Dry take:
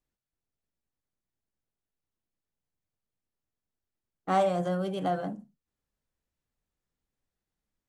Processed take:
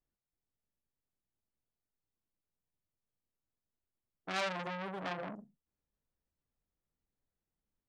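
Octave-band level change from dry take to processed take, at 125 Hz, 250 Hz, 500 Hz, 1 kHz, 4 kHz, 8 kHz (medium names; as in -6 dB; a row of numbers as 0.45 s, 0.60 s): -12.5 dB, -12.5 dB, -12.5 dB, -11.0 dB, +1.0 dB, -1.5 dB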